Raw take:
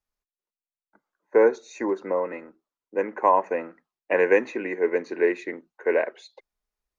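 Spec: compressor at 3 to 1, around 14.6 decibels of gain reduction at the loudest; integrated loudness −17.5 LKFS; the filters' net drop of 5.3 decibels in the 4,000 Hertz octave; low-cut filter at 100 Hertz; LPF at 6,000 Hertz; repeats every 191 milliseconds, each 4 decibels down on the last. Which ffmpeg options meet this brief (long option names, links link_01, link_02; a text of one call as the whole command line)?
ffmpeg -i in.wav -af "highpass=100,lowpass=6000,equalizer=frequency=4000:width_type=o:gain=-6,acompressor=threshold=-34dB:ratio=3,aecho=1:1:191|382|573|764|955|1146|1337|1528|1719:0.631|0.398|0.25|0.158|0.0994|0.0626|0.0394|0.0249|0.0157,volume=17.5dB" out.wav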